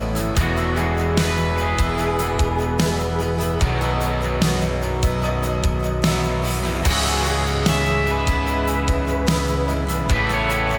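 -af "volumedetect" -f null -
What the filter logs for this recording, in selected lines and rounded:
mean_volume: -19.8 dB
max_volume: -5.0 dB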